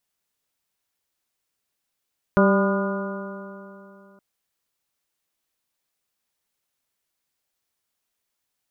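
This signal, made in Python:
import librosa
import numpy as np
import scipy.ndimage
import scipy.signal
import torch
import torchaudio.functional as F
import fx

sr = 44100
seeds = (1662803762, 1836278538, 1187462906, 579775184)

y = fx.additive_stiff(sr, length_s=1.82, hz=195.0, level_db=-15.5, upper_db=(-4.0, -3.0, -17.0, -8.5, -9.5, -8.0), decay_s=2.87, stiffness=0.0021)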